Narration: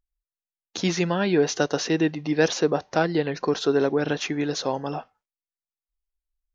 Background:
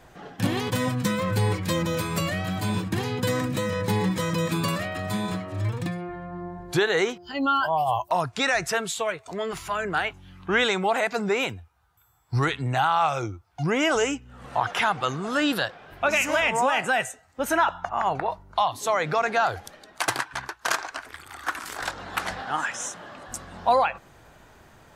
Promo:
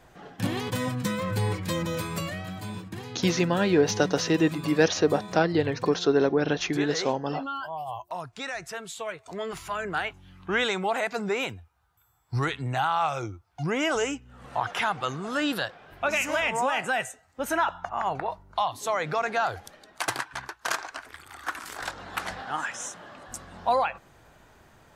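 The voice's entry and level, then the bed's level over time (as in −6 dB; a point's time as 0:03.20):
2.40 s, −0.5 dB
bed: 0:02.03 −3.5 dB
0:02.83 −11 dB
0:08.76 −11 dB
0:09.32 −3.5 dB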